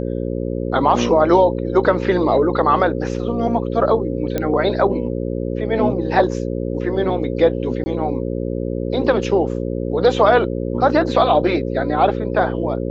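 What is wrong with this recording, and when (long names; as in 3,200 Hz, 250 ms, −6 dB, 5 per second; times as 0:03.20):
mains buzz 60 Hz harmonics 9 −23 dBFS
0:04.38: click −8 dBFS
0:07.84–0:07.86: drop-out 20 ms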